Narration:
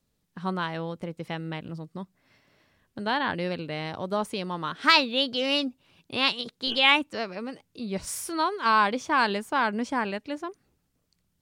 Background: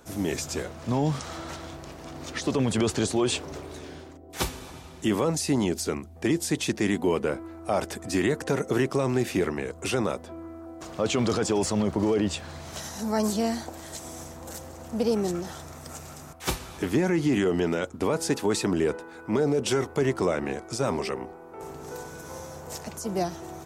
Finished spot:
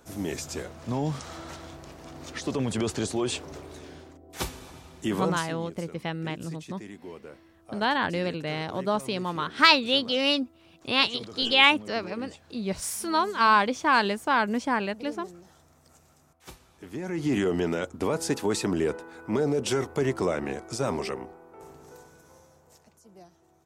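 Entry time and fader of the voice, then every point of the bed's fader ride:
4.75 s, +1.5 dB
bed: 5.32 s -3.5 dB
5.56 s -18 dB
16.78 s -18 dB
17.32 s -1.5 dB
21.09 s -1.5 dB
23.07 s -23.5 dB

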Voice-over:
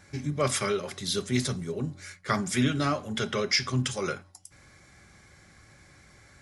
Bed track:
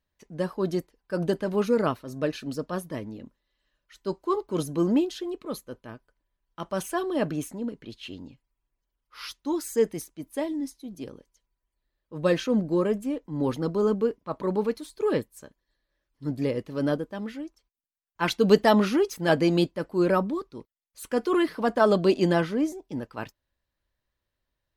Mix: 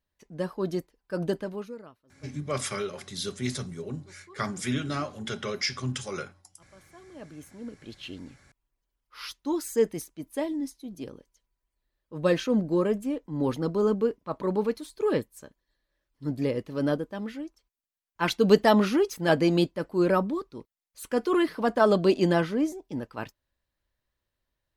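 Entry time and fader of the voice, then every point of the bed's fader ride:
2.10 s, -4.0 dB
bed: 1.39 s -2.5 dB
1.92 s -26 dB
6.88 s -26 dB
7.96 s -0.5 dB

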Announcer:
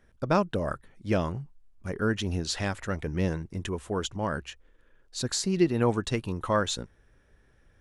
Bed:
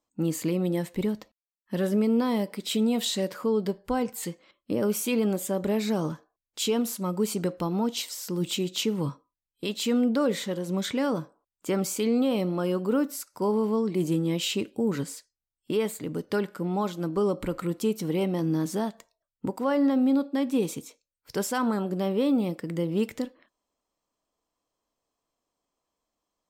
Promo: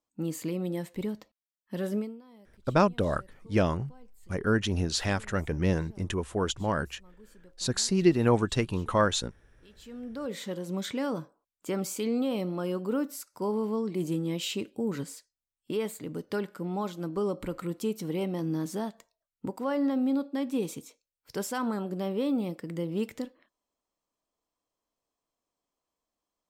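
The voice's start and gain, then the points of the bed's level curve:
2.45 s, +1.5 dB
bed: 1.98 s -5.5 dB
2.22 s -28.5 dB
9.60 s -28.5 dB
10.48 s -4.5 dB

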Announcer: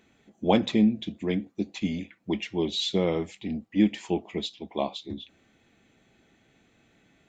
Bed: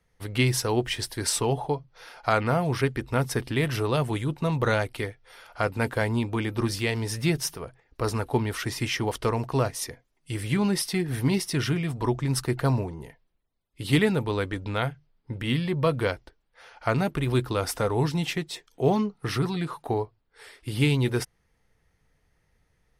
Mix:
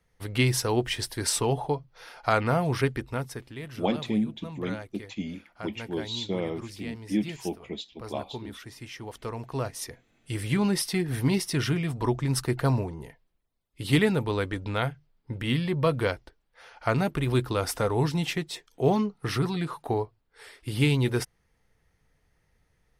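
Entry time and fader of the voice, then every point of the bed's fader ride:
3.35 s, -5.0 dB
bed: 2.93 s -0.5 dB
3.50 s -14 dB
8.89 s -14 dB
10.13 s -0.5 dB

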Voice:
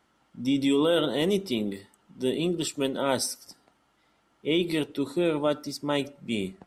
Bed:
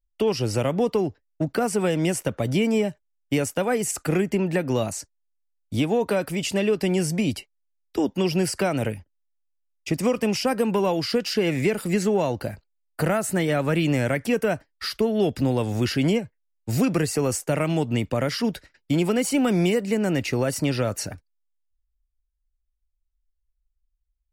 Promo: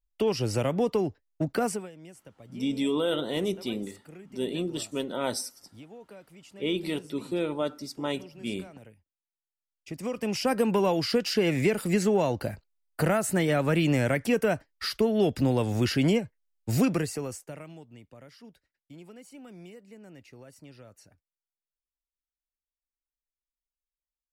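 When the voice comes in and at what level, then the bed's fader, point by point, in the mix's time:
2.15 s, -4.0 dB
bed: 1.71 s -3.5 dB
1.91 s -25 dB
9.34 s -25 dB
10.52 s -2 dB
16.85 s -2 dB
17.88 s -26 dB

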